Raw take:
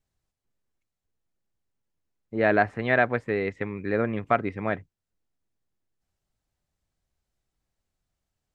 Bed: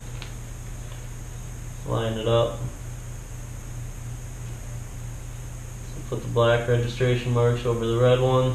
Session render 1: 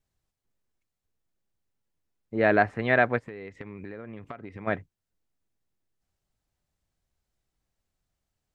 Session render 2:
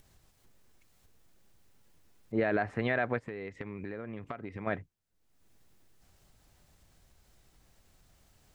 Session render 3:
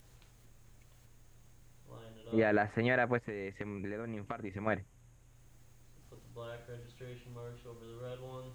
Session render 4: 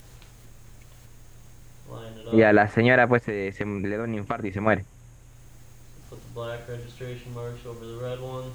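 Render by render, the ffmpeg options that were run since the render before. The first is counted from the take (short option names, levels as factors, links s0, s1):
-filter_complex "[0:a]asplit=3[s0][s1][s2];[s0]afade=t=out:st=3.18:d=0.02[s3];[s1]acompressor=threshold=0.0178:ratio=16:attack=3.2:release=140:knee=1:detection=peak,afade=t=in:st=3.18:d=0.02,afade=t=out:st=4.66:d=0.02[s4];[s2]afade=t=in:st=4.66:d=0.02[s5];[s3][s4][s5]amix=inputs=3:normalize=0"
-af "alimiter=limit=0.133:level=0:latency=1:release=101,acompressor=mode=upward:threshold=0.00447:ratio=2.5"
-filter_complex "[1:a]volume=0.0473[s0];[0:a][s0]amix=inputs=2:normalize=0"
-af "volume=3.98"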